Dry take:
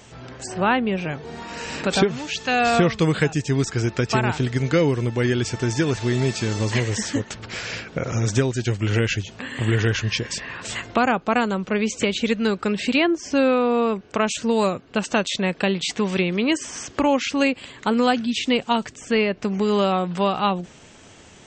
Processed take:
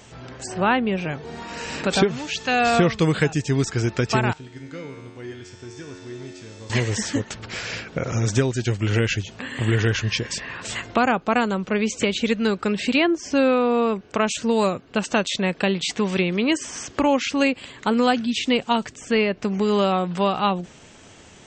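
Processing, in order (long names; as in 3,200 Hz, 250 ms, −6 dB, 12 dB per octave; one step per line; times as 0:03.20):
0:04.33–0:06.70: tuned comb filter 91 Hz, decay 1.8 s, harmonics all, mix 90%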